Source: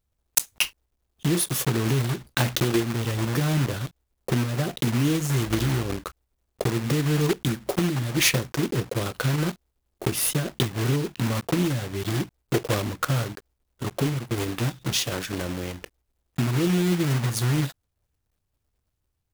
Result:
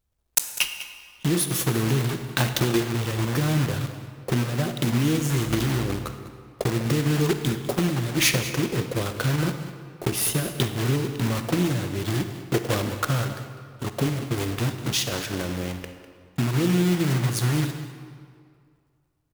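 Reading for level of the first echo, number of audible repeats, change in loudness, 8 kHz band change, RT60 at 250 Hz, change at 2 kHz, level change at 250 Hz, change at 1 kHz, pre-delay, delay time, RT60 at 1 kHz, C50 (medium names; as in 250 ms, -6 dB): -14.5 dB, 1, +0.5 dB, +0.5 dB, 2.1 s, +0.5 dB, +1.0 dB, +1.0 dB, 39 ms, 200 ms, 2.1 s, 7.5 dB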